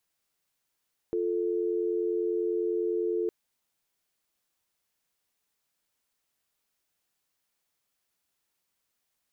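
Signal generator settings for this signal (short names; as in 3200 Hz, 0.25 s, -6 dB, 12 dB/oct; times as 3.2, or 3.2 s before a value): call progress tone dial tone, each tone -28.5 dBFS 2.16 s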